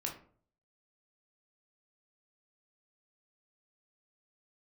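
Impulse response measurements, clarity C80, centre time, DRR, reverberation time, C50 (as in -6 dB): 14.0 dB, 21 ms, 0.0 dB, 0.50 s, 8.5 dB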